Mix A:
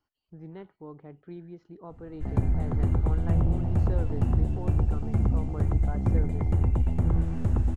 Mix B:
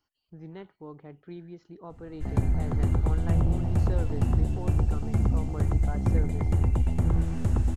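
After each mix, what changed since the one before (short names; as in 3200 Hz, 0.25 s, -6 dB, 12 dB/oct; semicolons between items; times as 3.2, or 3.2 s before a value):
master: add high shelf 2900 Hz +10.5 dB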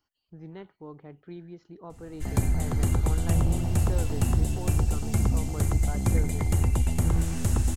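background: remove LPF 1200 Hz 6 dB/oct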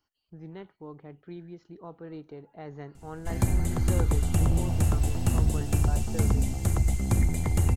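background: entry +1.05 s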